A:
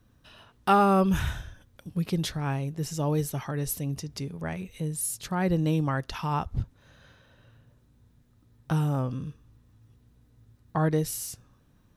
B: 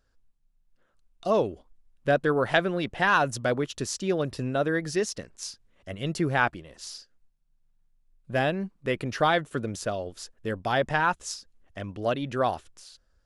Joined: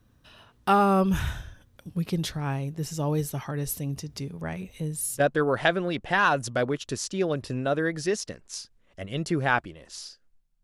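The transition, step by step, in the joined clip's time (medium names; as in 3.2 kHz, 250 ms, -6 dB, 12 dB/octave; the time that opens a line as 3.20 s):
A
4.62 s: add B from 1.51 s 0.58 s -8 dB
5.20 s: go over to B from 2.09 s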